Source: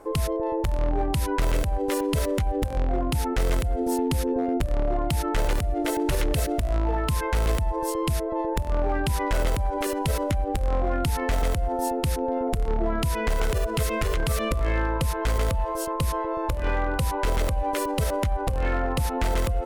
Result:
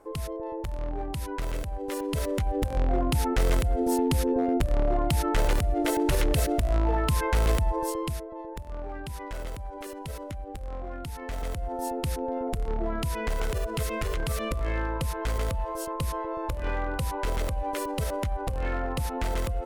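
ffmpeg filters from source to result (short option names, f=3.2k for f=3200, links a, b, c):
-af "volume=7.5dB,afade=t=in:st=1.81:d=1.11:silence=0.398107,afade=t=out:st=7.69:d=0.59:silence=0.251189,afade=t=in:st=11.17:d=0.8:silence=0.421697"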